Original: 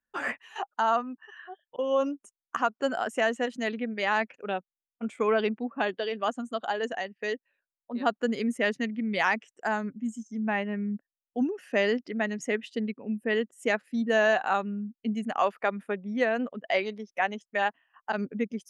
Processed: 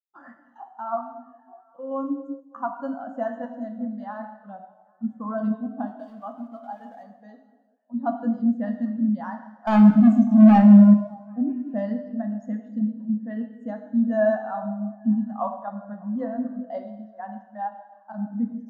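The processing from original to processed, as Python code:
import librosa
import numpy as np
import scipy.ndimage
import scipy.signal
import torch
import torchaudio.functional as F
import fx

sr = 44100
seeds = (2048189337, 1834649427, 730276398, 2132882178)

p1 = fx.rattle_buzz(x, sr, strikes_db=-43.0, level_db=-33.0)
p2 = scipy.signal.sosfilt(scipy.signal.butter(4, 6600.0, 'lowpass', fs=sr, output='sos'), p1)
p3 = fx.peak_eq(p2, sr, hz=290.0, db=11.5, octaves=1.7)
p4 = fx.level_steps(p3, sr, step_db=20)
p5 = p3 + (p4 * librosa.db_to_amplitude(-1.5))
p6 = fx.fixed_phaser(p5, sr, hz=990.0, stages=4)
p7 = fx.sample_gate(p6, sr, floor_db=-37.5, at=(5.87, 7.03))
p8 = fx.leveller(p7, sr, passes=5, at=(9.67, 10.94))
p9 = p8 + fx.echo_stepped(p8, sr, ms=199, hz=300.0, octaves=0.7, feedback_pct=70, wet_db=-10, dry=0)
p10 = fx.rev_gated(p9, sr, seeds[0], gate_ms=450, shape='falling', drr_db=2.0)
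p11 = fx.spectral_expand(p10, sr, expansion=1.5)
y = p11 * librosa.db_to_amplitude(-1.5)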